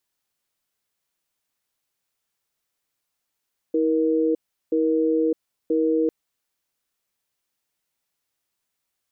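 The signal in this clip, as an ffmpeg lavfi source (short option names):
-f lavfi -i "aevalsrc='0.0944*(sin(2*PI*320*t)+sin(2*PI*473*t))*clip(min(mod(t,0.98),0.61-mod(t,0.98))/0.005,0,1)':d=2.35:s=44100"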